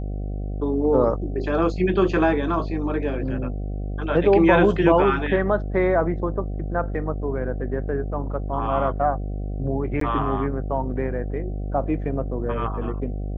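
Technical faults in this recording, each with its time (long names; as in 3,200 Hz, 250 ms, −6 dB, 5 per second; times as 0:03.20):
mains buzz 50 Hz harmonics 15 −28 dBFS
0:10.00–0:10.01: drop-out 13 ms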